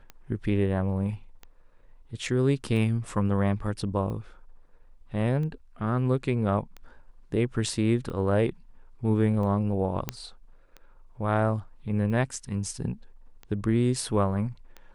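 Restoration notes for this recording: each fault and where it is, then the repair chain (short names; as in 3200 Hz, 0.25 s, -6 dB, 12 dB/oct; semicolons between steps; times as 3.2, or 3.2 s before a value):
tick 45 rpm -27 dBFS
10.09 pop -12 dBFS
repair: de-click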